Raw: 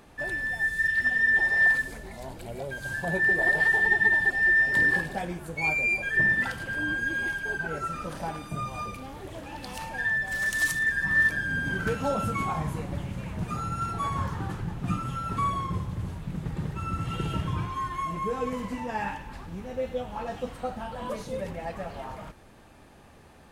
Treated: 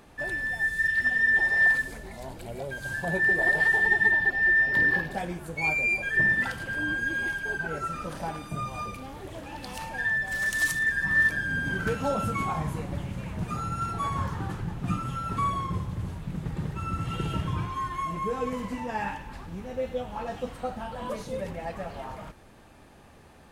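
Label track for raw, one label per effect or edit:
4.110000	5.110000	parametric band 8,500 Hz −15 dB 0.69 octaves

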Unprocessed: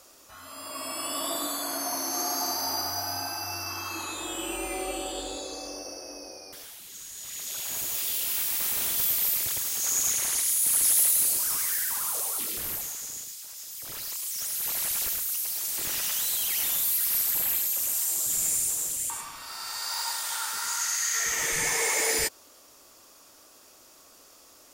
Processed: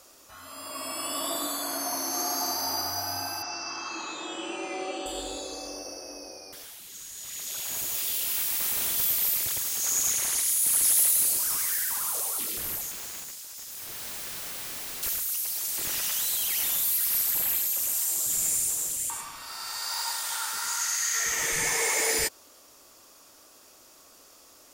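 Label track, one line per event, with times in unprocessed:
3.420000	5.060000	elliptic band-pass filter 150–6,200 Hz
12.910000	15.030000	wrap-around overflow gain 32 dB

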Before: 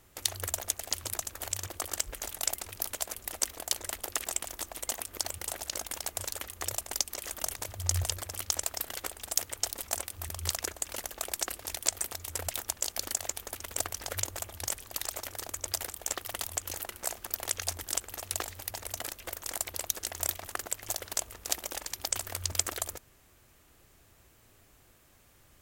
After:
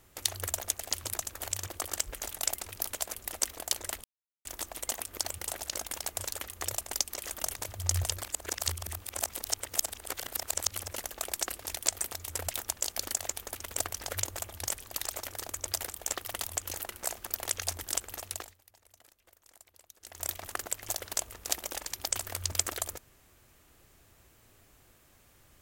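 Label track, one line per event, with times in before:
4.040000	4.450000	silence
8.240000	10.930000	reverse
18.150000	20.420000	duck −23 dB, fades 0.43 s

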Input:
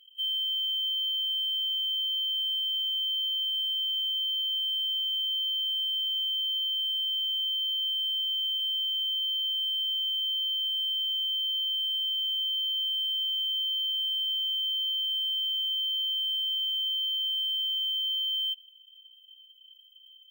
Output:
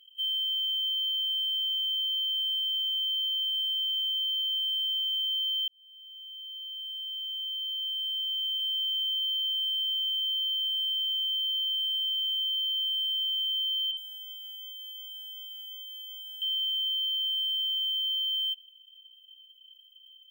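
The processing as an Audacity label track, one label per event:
5.680000	8.900000	fade in linear
13.910000	16.420000	multiband delay without the direct sound lows, highs 60 ms, split 3,400 Hz

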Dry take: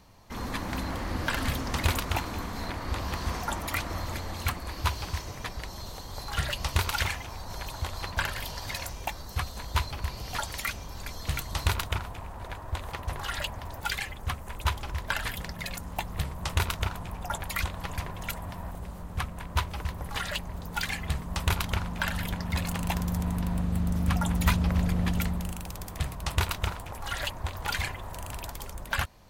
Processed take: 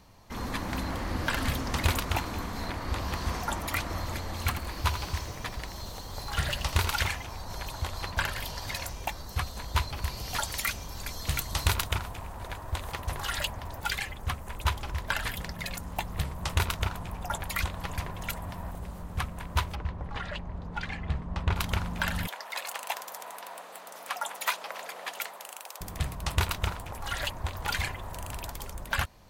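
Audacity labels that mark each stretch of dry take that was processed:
4.250000	6.930000	feedback echo at a low word length 82 ms, feedback 35%, word length 8 bits, level −9.5 dB
9.960000	13.520000	high-shelf EQ 4,100 Hz +5.5 dB
19.750000	21.560000	head-to-tape spacing loss at 10 kHz 25 dB
22.270000	25.810000	high-pass filter 540 Hz 24 dB per octave

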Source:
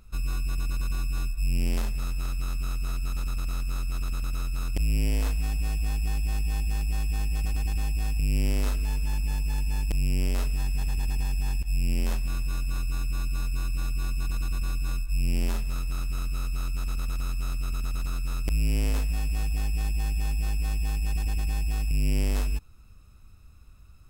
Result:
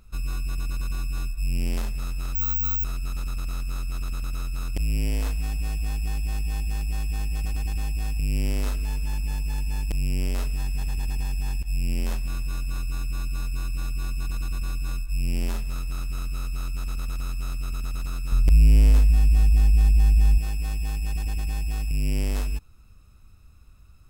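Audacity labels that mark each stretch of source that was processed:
2.350000	2.840000	bad sample-rate conversion rate divided by 2×, down none, up zero stuff
18.320000	20.380000	low-shelf EQ 170 Hz +11 dB

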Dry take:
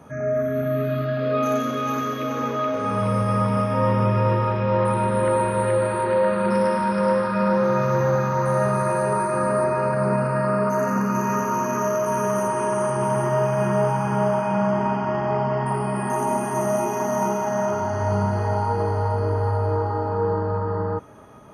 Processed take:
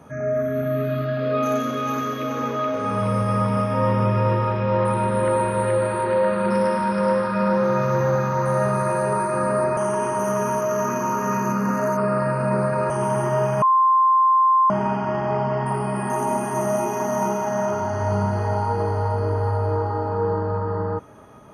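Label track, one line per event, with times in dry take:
9.770000	12.900000	reverse
13.620000	14.700000	beep over 1,050 Hz −13 dBFS

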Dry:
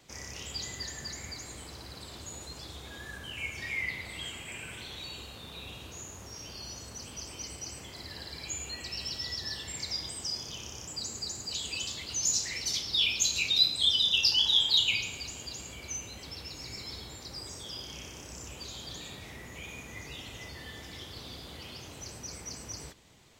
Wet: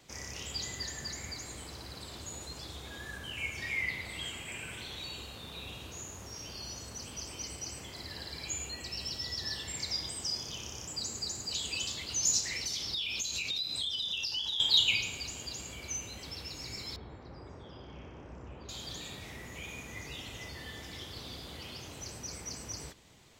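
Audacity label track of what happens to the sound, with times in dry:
8.670000	9.380000	parametric band 2,400 Hz −3 dB 2.2 octaves
12.400000	14.600000	downward compressor 10 to 1, threshold −31 dBFS
16.960000	18.690000	low-pass filter 1,400 Hz

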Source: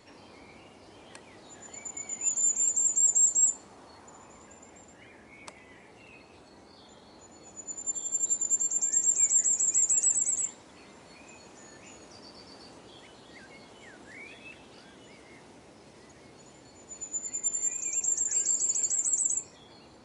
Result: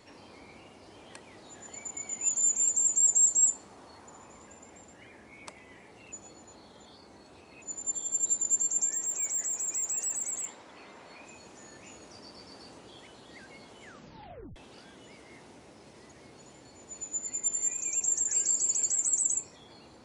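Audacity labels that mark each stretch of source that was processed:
6.120000	7.620000	reverse
8.910000	11.250000	mid-hump overdrive drive 10 dB, tone 2,200 Hz, clips at −15 dBFS
13.820000	13.820000	tape stop 0.74 s

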